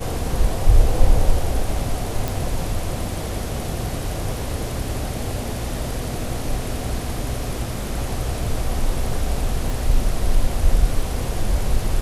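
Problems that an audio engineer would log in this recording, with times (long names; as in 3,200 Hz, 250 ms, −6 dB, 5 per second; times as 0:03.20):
0:02.28: click
0:09.70: click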